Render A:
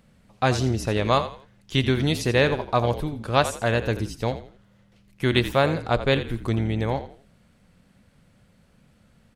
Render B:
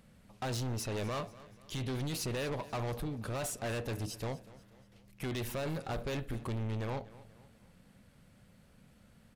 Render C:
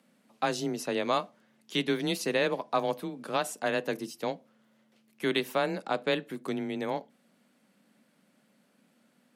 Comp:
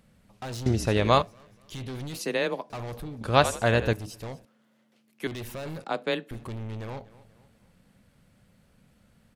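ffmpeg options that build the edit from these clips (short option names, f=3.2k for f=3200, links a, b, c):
-filter_complex "[0:a]asplit=2[a][b];[2:a]asplit=3[c][d][e];[1:a]asplit=6[f][g][h][i][j][k];[f]atrim=end=0.662[l];[a]atrim=start=0.658:end=1.222[m];[g]atrim=start=1.218:end=2.192[n];[c]atrim=start=2.188:end=2.702[o];[h]atrim=start=2.698:end=3.212[p];[b]atrim=start=3.208:end=3.932[q];[i]atrim=start=3.928:end=4.452[r];[d]atrim=start=4.448:end=5.272[s];[j]atrim=start=5.268:end=5.842[t];[e]atrim=start=5.838:end=6.312[u];[k]atrim=start=6.308[v];[l][m]acrossfade=d=0.004:c1=hsin:c2=hsin[w];[w][n]acrossfade=d=0.004:c1=hsin:c2=hsin[x];[x][o]acrossfade=d=0.004:c1=hsin:c2=hsin[y];[y][p]acrossfade=d=0.004:c1=hsin:c2=hsin[z];[z][q]acrossfade=d=0.004:c1=hsin:c2=hsin[aa];[aa][r]acrossfade=d=0.004:c1=hsin:c2=hsin[ab];[ab][s]acrossfade=d=0.004:c1=hsin:c2=hsin[ac];[ac][t]acrossfade=d=0.004:c1=hsin:c2=hsin[ad];[ad][u]acrossfade=d=0.004:c1=hsin:c2=hsin[ae];[ae][v]acrossfade=d=0.004:c1=hsin:c2=hsin"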